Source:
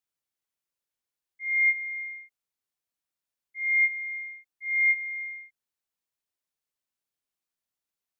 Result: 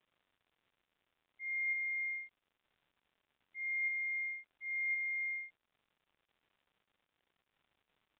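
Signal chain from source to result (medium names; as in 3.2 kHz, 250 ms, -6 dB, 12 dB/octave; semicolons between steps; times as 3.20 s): reverse; compression, threshold -36 dBFS, peak gain reduction 15 dB; reverse; crackle 260 per s -60 dBFS; resampled via 8 kHz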